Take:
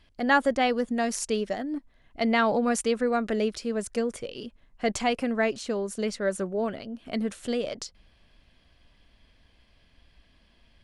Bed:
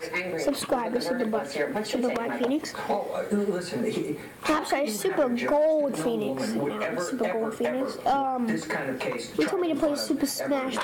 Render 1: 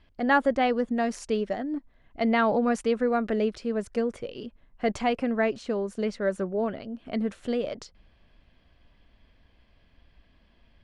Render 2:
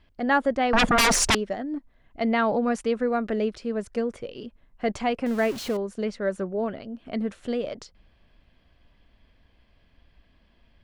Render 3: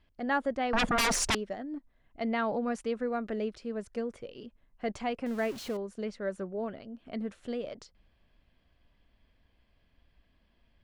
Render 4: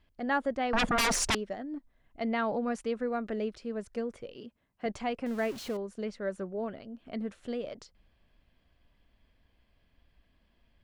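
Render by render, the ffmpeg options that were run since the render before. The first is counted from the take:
-af "aemphasis=mode=reproduction:type=75fm"
-filter_complex "[0:a]asettb=1/sr,asplit=3[a][b][c];[a]atrim=end=0.734[d];[b]atrim=start=0.73:end=1.35,asetpts=PTS-STARTPTS,afade=t=in:d=0.004:c=qsin,afade=t=out:st=0.616:d=0.004:c=qsin,aeval=exprs='0.168*sin(PI/2*7.94*val(0)/0.168)':c=same[e];[c]atrim=start=1.346[f];[d][e]acrossfade=d=0.004:c1=hsin:c2=qsin[g];[g][f]acrossfade=d=0.004:c1=qsin:c2=hsin,asettb=1/sr,asplit=3[h][i][j];[h]atrim=end=5.264[k];[i]atrim=start=5.26:end=5.77,asetpts=PTS-STARTPTS,afade=t=in:d=0.004:c=qsin,afade=t=out:st=0.506:d=0.004:c=qsin,aeval=exprs='val(0)+0.5*0.0237*sgn(val(0))':c=same[l];[j]atrim=start=5.766[m];[k][l]acrossfade=d=0.004:c1=hsin:c2=qsin[n];[n][m]acrossfade=d=0.004:c1=qsin:c2=hsin"
-af "volume=-7.5dB"
-filter_complex "[0:a]asettb=1/sr,asplit=3[a][b][c];[a]atrim=end=4.364[d];[b]atrim=start=4.36:end=4.86,asetpts=PTS-STARTPTS,afade=t=in:d=0.004:c=qsin,afade=t=out:st=0.496:d=0.004:c=qsin,highpass=93[e];[c]atrim=start=4.856[f];[d][e]acrossfade=d=0.004:c1=hsin:c2=qsin[g];[g][f]acrossfade=d=0.004:c1=qsin:c2=hsin"

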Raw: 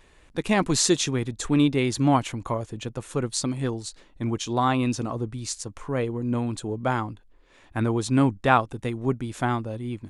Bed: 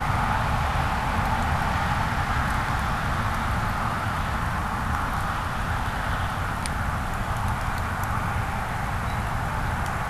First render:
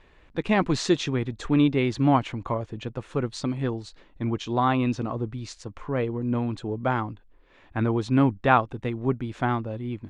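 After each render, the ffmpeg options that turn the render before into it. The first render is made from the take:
-af "lowpass=3.4k"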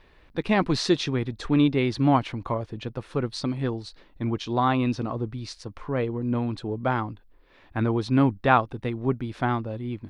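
-af "aexciter=amount=1.4:drive=3:freq=4k"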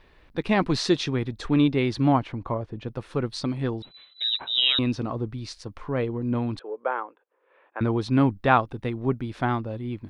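-filter_complex "[0:a]asettb=1/sr,asplit=3[a][b][c];[a]atrim=end=2.124[d];[b]atrim=start=2.12:end=2.88,asetpts=PTS-STARTPTS,afade=t=in:d=0.004:c=qsin,afade=t=out:st=0.756:d=0.004:c=qsin,highshelf=f=2.6k:g=-11[e];[c]atrim=start=2.876[f];[d][e]acrossfade=d=0.004:c1=hsin:c2=qsin[g];[g][f]acrossfade=d=0.004:c1=qsin:c2=hsin,asettb=1/sr,asplit=3[h][i][j];[h]atrim=end=3.824[k];[i]atrim=start=3.82:end=4.79,asetpts=PTS-STARTPTS,afade=t=in:d=0.004:c=qsin,afade=t=out:st=0.966:d=0.004:c=qsin,lowpass=f=3.4k:t=q:w=0.5098,lowpass=f=3.4k:t=q:w=0.6013,lowpass=f=3.4k:t=q:w=0.9,lowpass=f=3.4k:t=q:w=2.563,afreqshift=-4000[l];[j]atrim=start=4.786[m];[k][l]acrossfade=d=0.004:c1=hsin:c2=qsin[n];[n][m]acrossfade=d=0.004:c1=qsin:c2=hsin,asettb=1/sr,asplit=3[o][p][q];[o]atrim=end=6.594[r];[p]atrim=start=6.59:end=7.81,asetpts=PTS-STARTPTS,afade=t=in:d=0.004:c=qsin,afade=t=out:st=1.216:d=0.004:c=qsin,highpass=f=460:w=0.5412,highpass=f=460:w=1.3066,equalizer=f=480:t=q:w=4:g=7,equalizer=f=710:t=q:w=4:g=-5,equalizer=f=2k:t=q:w=4:g=-6,lowpass=f=2.3k:w=0.5412,lowpass=f=2.3k:w=1.3066[s];[q]atrim=start=7.806[t];[r][s]acrossfade=d=0.004:c1=hsin:c2=qsin[u];[u][t]acrossfade=d=0.004:c1=qsin:c2=hsin"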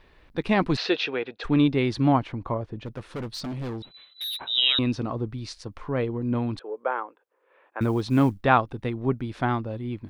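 -filter_complex "[0:a]asplit=3[a][b][c];[a]afade=t=out:st=0.76:d=0.02[d];[b]highpass=430,equalizer=f=470:t=q:w=4:g=9,equalizer=f=730:t=q:w=4:g=5,equalizer=f=1.1k:t=q:w=4:g=-3,equalizer=f=1.5k:t=q:w=4:g=6,equalizer=f=2.6k:t=q:w=4:g=9,lowpass=f=4.5k:w=0.5412,lowpass=f=4.5k:w=1.3066,afade=t=in:st=0.76:d=0.02,afade=t=out:st=1.43:d=0.02[e];[c]afade=t=in:st=1.43:d=0.02[f];[d][e][f]amix=inputs=3:normalize=0,asplit=3[g][h][i];[g]afade=t=out:st=2.75:d=0.02[j];[h]asoftclip=type=hard:threshold=-29.5dB,afade=t=in:st=2.75:d=0.02,afade=t=out:st=4.37:d=0.02[k];[i]afade=t=in:st=4.37:d=0.02[l];[j][k][l]amix=inputs=3:normalize=0,asplit=3[m][n][o];[m]afade=t=out:st=7.8:d=0.02[p];[n]acrusher=bits=9:mode=log:mix=0:aa=0.000001,afade=t=in:st=7.8:d=0.02,afade=t=out:st=8.42:d=0.02[q];[o]afade=t=in:st=8.42:d=0.02[r];[p][q][r]amix=inputs=3:normalize=0"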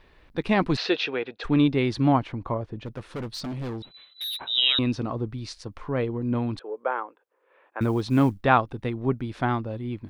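-af anull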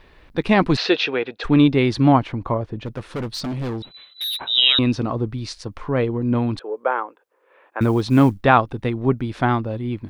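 -af "volume=6dB,alimiter=limit=-1dB:level=0:latency=1"

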